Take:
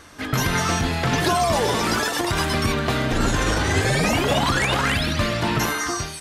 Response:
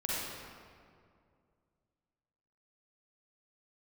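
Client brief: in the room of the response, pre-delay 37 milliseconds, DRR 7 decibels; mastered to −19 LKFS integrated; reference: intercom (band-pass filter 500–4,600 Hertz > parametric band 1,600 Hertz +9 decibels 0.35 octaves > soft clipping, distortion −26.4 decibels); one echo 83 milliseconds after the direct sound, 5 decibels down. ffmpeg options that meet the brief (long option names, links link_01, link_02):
-filter_complex "[0:a]aecho=1:1:83:0.562,asplit=2[link_01][link_02];[1:a]atrim=start_sample=2205,adelay=37[link_03];[link_02][link_03]afir=irnorm=-1:irlink=0,volume=-13dB[link_04];[link_01][link_04]amix=inputs=2:normalize=0,highpass=500,lowpass=4600,equalizer=frequency=1600:width_type=o:width=0.35:gain=9,asoftclip=threshold=-7.5dB,volume=0.5dB"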